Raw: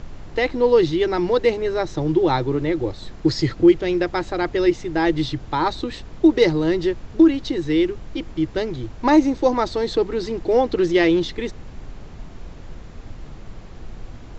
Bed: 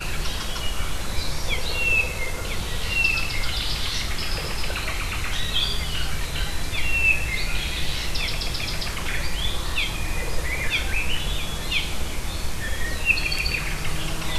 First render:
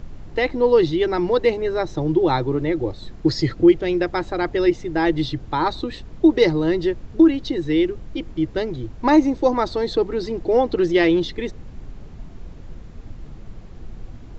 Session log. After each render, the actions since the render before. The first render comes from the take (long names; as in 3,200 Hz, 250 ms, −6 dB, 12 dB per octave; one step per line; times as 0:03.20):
broadband denoise 6 dB, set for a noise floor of −39 dBFS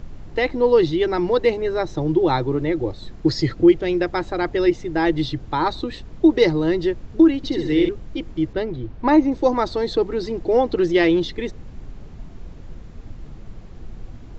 0:07.37–0:07.89: flutter between parallel walls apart 11.5 metres, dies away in 0.7 s
0:08.53–0:09.32: high-frequency loss of the air 160 metres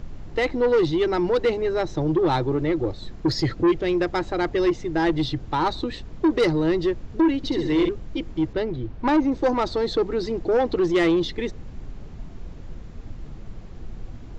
soft clipping −14 dBFS, distortion −11 dB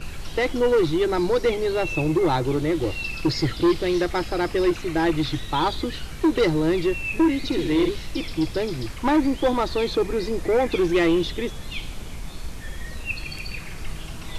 mix in bed −10 dB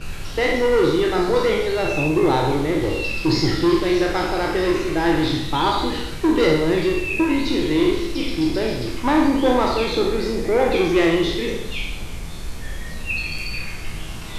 peak hold with a decay on every bin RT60 0.66 s
four-comb reverb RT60 0.86 s, combs from 32 ms, DRR 4 dB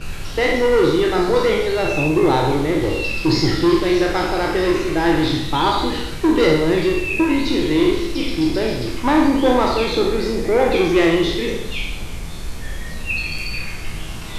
level +2 dB